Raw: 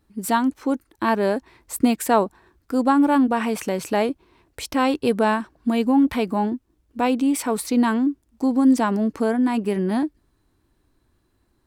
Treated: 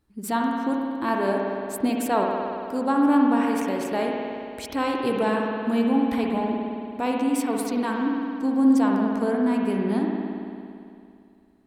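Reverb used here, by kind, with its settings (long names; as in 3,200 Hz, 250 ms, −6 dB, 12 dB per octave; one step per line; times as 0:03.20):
spring reverb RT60 2.5 s, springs 56 ms, chirp 50 ms, DRR −0.5 dB
level −6 dB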